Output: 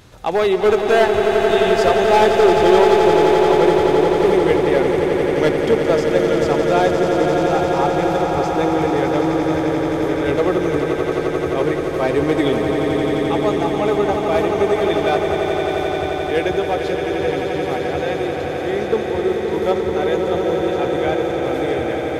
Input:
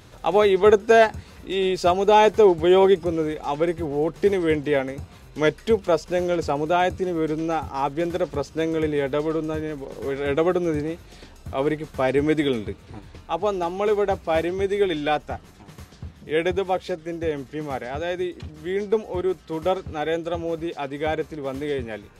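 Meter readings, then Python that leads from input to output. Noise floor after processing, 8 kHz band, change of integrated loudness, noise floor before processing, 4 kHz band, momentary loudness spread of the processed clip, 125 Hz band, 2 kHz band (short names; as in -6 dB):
-23 dBFS, n/a, +5.5 dB, -47 dBFS, +6.0 dB, 7 LU, +6.5 dB, +6.0 dB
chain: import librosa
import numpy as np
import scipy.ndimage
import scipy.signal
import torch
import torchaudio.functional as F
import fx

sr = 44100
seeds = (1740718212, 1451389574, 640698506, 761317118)

y = np.clip(10.0 ** (13.0 / 20.0) * x, -1.0, 1.0) / 10.0 ** (13.0 / 20.0)
y = fx.echo_swell(y, sr, ms=87, loudest=8, wet_db=-8.5)
y = y * 10.0 ** (2.0 / 20.0)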